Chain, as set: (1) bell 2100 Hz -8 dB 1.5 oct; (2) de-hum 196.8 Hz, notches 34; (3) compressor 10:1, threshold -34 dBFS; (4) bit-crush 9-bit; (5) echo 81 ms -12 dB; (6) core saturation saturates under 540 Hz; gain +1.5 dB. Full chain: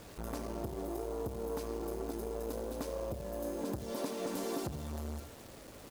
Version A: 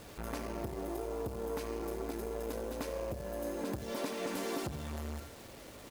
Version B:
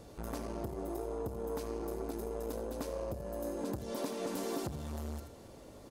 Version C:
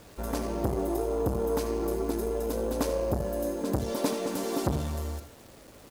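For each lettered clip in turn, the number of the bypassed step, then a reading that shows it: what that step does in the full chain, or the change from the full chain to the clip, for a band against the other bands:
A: 1, 2 kHz band +5.5 dB; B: 4, distortion -21 dB; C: 3, mean gain reduction 7.5 dB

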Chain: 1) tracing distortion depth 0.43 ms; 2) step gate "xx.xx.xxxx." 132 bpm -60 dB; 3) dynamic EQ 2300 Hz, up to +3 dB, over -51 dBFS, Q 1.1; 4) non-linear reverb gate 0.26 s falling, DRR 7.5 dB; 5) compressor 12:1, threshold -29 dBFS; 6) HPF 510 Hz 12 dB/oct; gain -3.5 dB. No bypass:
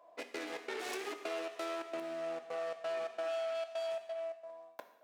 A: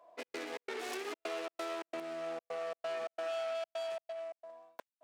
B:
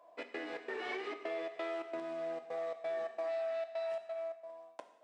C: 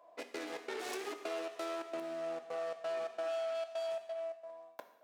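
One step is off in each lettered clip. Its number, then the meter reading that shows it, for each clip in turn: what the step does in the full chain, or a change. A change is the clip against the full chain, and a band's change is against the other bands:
4, momentary loudness spread change +1 LU; 1, crest factor change -2.0 dB; 3, 2 kHz band -2.0 dB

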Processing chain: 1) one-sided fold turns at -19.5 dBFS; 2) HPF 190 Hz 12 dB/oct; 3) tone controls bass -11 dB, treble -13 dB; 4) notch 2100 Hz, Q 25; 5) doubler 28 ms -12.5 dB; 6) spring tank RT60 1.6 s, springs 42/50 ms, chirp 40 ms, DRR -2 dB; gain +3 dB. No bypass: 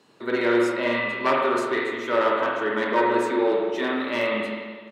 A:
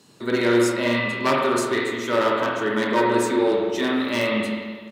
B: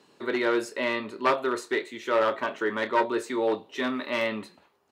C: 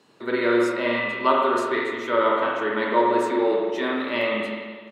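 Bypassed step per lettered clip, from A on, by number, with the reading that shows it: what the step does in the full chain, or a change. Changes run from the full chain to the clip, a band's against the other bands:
3, 125 Hz band +8.5 dB; 6, loudness change -4.0 LU; 1, distortion -11 dB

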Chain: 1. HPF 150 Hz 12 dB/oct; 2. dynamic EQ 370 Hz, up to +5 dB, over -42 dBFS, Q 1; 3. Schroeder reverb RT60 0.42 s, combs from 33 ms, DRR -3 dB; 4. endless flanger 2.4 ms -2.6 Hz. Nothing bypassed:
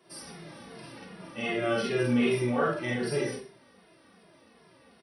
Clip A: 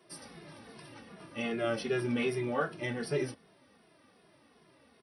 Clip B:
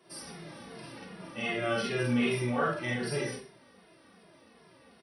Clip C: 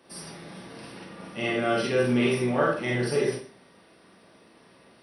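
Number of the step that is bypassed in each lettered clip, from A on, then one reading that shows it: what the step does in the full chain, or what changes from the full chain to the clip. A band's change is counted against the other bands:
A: 3, loudness change -5.0 LU; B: 2, momentary loudness spread change -3 LU; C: 4, momentary loudness spread change -1 LU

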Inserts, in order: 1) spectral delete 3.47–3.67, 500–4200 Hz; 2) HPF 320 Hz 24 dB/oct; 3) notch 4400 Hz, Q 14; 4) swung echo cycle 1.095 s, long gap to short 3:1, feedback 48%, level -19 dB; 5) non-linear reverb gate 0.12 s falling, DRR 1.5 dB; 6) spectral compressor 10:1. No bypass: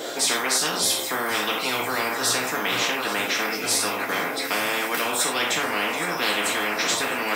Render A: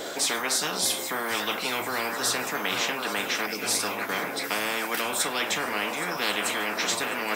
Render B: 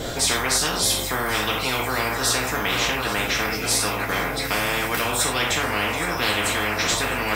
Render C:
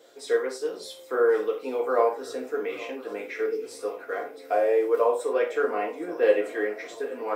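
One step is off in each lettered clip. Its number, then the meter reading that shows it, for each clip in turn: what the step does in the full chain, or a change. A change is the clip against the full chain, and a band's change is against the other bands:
5, loudness change -3.5 LU; 2, 125 Hz band +10.5 dB; 6, 8 kHz band -17.5 dB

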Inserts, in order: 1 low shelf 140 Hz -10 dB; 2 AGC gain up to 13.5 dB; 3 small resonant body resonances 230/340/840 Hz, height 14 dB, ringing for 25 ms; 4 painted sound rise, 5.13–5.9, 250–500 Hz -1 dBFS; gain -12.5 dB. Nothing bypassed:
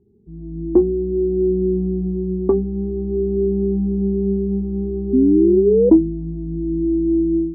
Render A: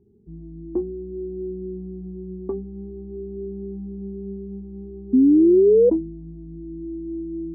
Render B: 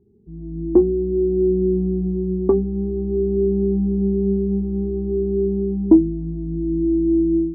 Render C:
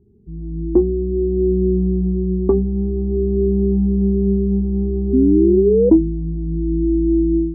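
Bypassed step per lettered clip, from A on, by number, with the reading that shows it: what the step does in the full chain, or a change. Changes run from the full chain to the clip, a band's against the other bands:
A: 2, momentary loudness spread change +12 LU; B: 4, momentary loudness spread change -3 LU; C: 1, crest factor change -2.0 dB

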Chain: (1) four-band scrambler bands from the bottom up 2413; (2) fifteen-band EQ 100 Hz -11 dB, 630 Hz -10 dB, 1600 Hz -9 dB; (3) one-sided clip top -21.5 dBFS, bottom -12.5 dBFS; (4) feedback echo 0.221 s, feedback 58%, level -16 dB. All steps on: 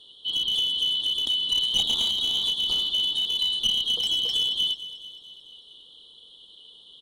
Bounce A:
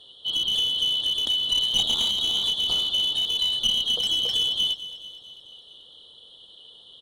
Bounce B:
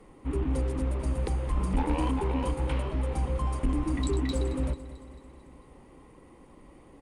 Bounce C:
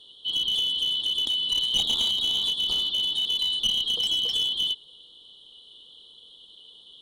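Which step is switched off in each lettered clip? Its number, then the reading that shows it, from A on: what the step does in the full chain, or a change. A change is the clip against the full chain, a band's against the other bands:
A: 2, 500 Hz band +2.0 dB; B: 1, momentary loudness spread change +1 LU; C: 4, echo-to-direct -14.0 dB to none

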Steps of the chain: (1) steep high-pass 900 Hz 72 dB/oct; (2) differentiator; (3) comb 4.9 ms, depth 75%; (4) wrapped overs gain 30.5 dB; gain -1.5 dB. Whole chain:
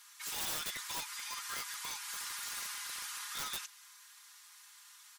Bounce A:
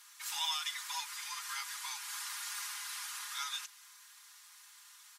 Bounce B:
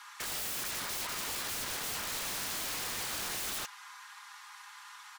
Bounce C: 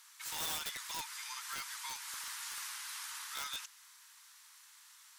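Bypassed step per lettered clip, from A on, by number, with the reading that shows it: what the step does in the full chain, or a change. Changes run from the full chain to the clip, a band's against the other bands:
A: 4, distortion 0 dB; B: 2, 250 Hz band +6.5 dB; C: 3, crest factor change +1.5 dB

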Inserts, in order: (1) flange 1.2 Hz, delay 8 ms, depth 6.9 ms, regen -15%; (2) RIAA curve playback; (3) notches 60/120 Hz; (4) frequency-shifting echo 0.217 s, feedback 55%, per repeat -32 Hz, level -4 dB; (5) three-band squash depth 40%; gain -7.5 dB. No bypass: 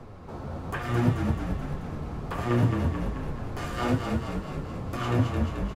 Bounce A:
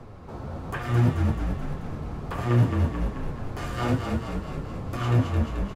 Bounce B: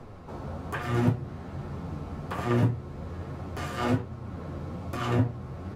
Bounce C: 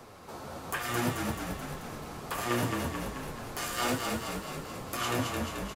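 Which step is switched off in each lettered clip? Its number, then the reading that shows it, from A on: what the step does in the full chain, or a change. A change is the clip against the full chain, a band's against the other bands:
3, 125 Hz band +3.5 dB; 4, momentary loudness spread change +2 LU; 2, 8 kHz band +13.0 dB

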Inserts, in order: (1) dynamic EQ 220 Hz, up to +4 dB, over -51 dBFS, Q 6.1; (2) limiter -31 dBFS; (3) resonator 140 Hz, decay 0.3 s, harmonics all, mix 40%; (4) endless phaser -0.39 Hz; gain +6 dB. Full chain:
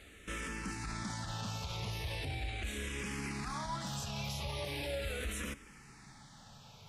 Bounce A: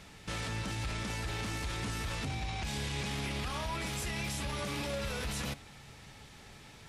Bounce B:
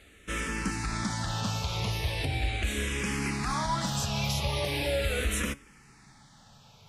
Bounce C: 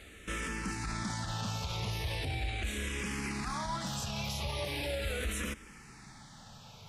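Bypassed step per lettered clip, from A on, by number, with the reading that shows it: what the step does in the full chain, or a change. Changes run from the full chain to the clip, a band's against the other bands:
4, crest factor change -2.5 dB; 2, mean gain reduction 6.5 dB; 3, loudness change +3.5 LU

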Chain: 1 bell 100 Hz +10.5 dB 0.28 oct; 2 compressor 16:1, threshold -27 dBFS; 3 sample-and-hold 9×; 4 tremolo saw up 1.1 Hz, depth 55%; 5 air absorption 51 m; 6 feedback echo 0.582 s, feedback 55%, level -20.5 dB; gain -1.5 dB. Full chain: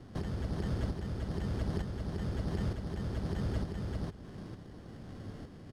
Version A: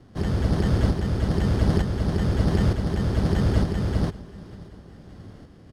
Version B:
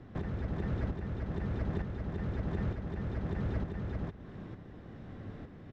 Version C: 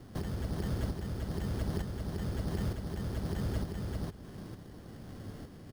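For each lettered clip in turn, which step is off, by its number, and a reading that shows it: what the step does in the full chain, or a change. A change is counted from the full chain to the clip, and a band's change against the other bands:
2, mean gain reduction 9.0 dB; 3, distortion -15 dB; 5, 8 kHz band +5.0 dB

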